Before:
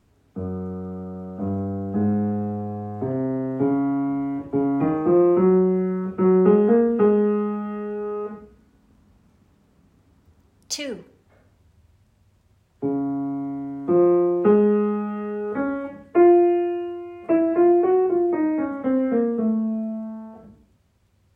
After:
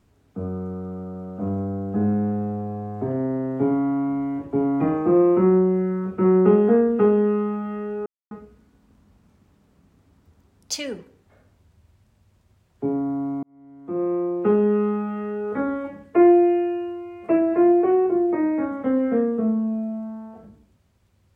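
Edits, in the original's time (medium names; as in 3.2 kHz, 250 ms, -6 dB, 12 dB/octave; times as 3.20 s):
8.06–8.31 s: mute
13.43–14.88 s: fade in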